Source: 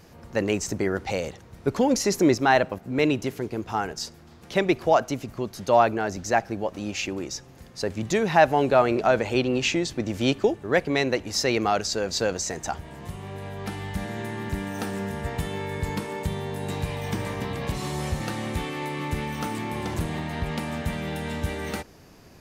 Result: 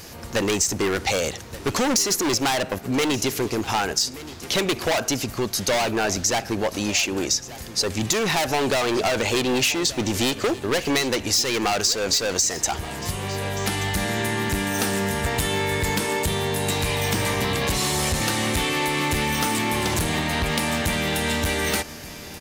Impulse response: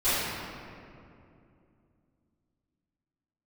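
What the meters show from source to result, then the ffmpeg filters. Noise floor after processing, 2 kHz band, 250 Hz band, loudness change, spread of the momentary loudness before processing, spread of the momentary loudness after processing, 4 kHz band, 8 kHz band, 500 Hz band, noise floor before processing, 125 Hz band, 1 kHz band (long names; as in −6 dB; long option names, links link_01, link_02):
−38 dBFS, +5.0 dB, +1.5 dB, +3.5 dB, 12 LU, 5 LU, +9.5 dB, +11.5 dB, 0.0 dB, −49 dBFS, +2.5 dB, +0.5 dB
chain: -af "volume=24.5dB,asoftclip=hard,volume=-24.5dB,highshelf=frequency=2400:gain=11.5,acompressor=threshold=-27dB:ratio=6,equalizer=frequency=160:width=2.6:gain=-3.5,aecho=1:1:1179:0.141,volume=8dB"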